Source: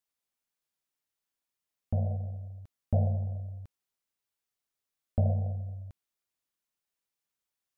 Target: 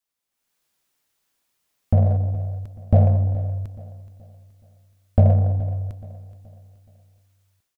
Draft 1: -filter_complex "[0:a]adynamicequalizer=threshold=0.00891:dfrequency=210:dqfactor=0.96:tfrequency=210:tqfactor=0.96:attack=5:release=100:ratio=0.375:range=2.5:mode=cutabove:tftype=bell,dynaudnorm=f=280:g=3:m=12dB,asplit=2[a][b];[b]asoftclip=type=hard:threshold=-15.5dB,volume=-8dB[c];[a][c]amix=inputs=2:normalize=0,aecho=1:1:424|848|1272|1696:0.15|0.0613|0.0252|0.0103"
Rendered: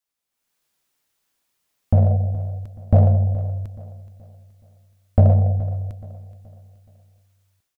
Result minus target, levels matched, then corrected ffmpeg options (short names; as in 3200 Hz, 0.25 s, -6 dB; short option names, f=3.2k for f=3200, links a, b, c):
hard clip: distortion -7 dB
-filter_complex "[0:a]adynamicequalizer=threshold=0.00891:dfrequency=210:dqfactor=0.96:tfrequency=210:tqfactor=0.96:attack=5:release=100:ratio=0.375:range=2.5:mode=cutabove:tftype=bell,dynaudnorm=f=280:g=3:m=12dB,asplit=2[a][b];[b]asoftclip=type=hard:threshold=-26dB,volume=-8dB[c];[a][c]amix=inputs=2:normalize=0,aecho=1:1:424|848|1272|1696:0.15|0.0613|0.0252|0.0103"